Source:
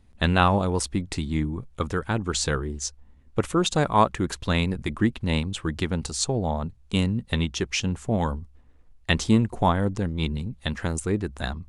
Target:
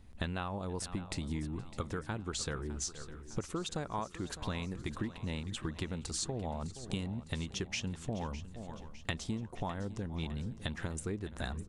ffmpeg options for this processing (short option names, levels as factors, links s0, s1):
-filter_complex "[0:a]asplit=2[s0][s1];[s1]aecho=0:1:471:0.0668[s2];[s0][s2]amix=inputs=2:normalize=0,acompressor=threshold=0.0178:ratio=12,asplit=2[s3][s4];[s4]aecho=0:1:607|1214|1821|2428|3035:0.178|0.0978|0.0538|0.0296|0.0163[s5];[s3][s5]amix=inputs=2:normalize=0,volume=1.12"